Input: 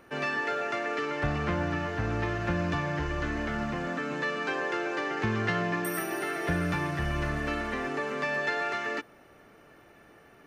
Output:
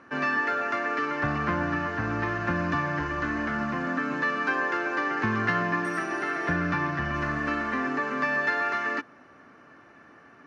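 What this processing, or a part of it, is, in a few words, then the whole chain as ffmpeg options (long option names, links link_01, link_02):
car door speaker: -filter_complex "[0:a]asettb=1/sr,asplit=3[link_01][link_02][link_03];[link_01]atrim=end=6.524[link_04];[link_02]atrim=start=6.52:end=7.14,asetpts=PTS-STARTPTS,afade=type=in:duration=0.004:curve=qsin,afade=type=out:start_time=0.616:duration=0.004:curve=qsin,lowpass=6000[link_05];[link_03]atrim=start=7.136[link_06];[link_04][link_05]acrossfade=duration=0.004:curve1=hsin:curve2=qsin[link_07];[link_07][link_06]acrossfade=duration=0.004:curve1=qsin:curve2=hsin,highpass=85,equalizer=frequency=260:width_type=q:width=4:gain=8,equalizer=frequency=430:width_type=q:width=4:gain=-3,equalizer=frequency=1100:width_type=q:width=4:gain=8,equalizer=frequency=1600:width_type=q:width=4:gain=7,equalizer=frequency=3400:width_type=q:width=4:gain=-5,lowpass=frequency=6600:width=0.5412,lowpass=frequency=6600:width=1.3066"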